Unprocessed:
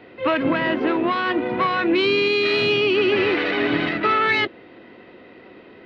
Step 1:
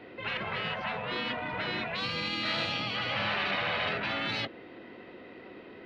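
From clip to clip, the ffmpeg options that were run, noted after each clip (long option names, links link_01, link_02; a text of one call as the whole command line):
ffmpeg -i in.wav -af "afftfilt=real='re*lt(hypot(re,im),0.2)':imag='im*lt(hypot(re,im),0.2)':win_size=1024:overlap=0.75,volume=-3dB" out.wav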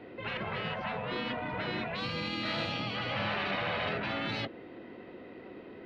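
ffmpeg -i in.wav -af "tiltshelf=frequency=970:gain=3.5,volume=-1.5dB" out.wav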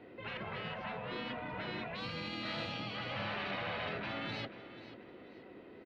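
ffmpeg -i in.wav -af "aecho=1:1:488|976|1464:0.188|0.0622|0.0205,volume=-6dB" out.wav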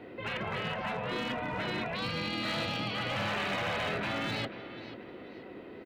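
ffmpeg -i in.wav -af "asoftclip=type=hard:threshold=-34.5dB,volume=7dB" out.wav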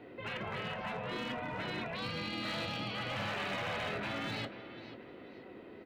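ffmpeg -i in.wav -af "flanger=delay=6.9:depth=3.4:regen=-76:speed=0.58:shape=triangular" out.wav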